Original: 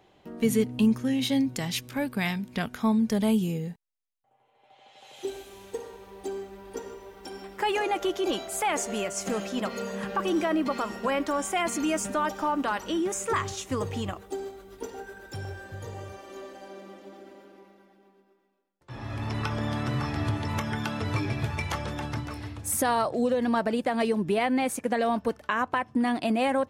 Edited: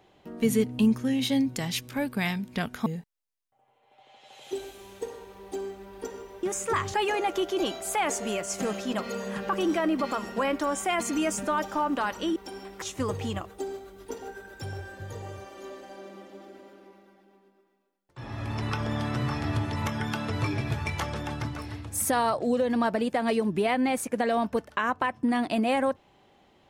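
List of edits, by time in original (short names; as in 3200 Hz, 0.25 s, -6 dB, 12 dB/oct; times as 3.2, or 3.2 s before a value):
2.86–3.58 cut
7.15–7.61 swap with 13.03–13.54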